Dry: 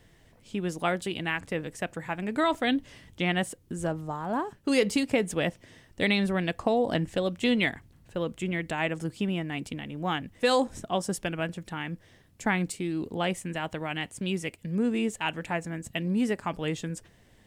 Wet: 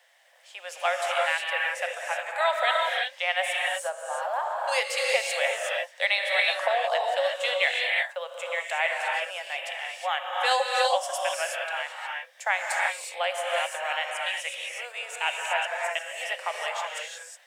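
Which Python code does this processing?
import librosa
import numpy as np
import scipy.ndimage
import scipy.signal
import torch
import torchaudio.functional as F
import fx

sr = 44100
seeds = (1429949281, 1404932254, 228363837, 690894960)

y = scipy.signal.sosfilt(scipy.signal.cheby1(6, 3, 530.0, 'highpass', fs=sr, output='sos'), x)
y = fx.rev_gated(y, sr, seeds[0], gate_ms=390, shape='rising', drr_db=-1.5)
y = F.gain(torch.from_numpy(y), 3.5).numpy()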